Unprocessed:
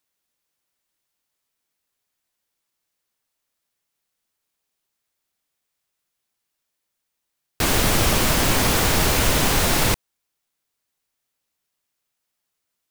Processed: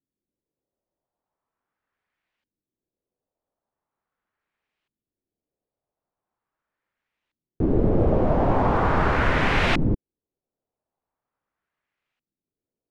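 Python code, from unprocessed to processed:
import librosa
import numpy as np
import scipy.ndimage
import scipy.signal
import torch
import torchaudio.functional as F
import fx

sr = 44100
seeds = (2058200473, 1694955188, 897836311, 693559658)

y = fx.filter_lfo_lowpass(x, sr, shape='saw_up', hz=0.41, low_hz=250.0, high_hz=2700.0, q=1.7)
y = fx.rider(y, sr, range_db=10, speed_s=0.5)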